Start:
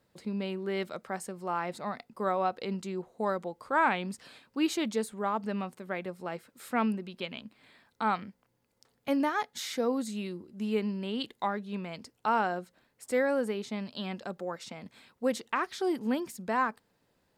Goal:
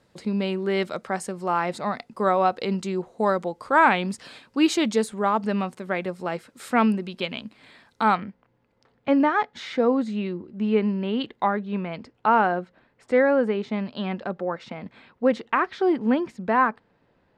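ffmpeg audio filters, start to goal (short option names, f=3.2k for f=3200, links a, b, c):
-af "asetnsamples=n=441:p=0,asendcmd='8.15 lowpass f 2500',lowpass=9.2k,volume=8.5dB"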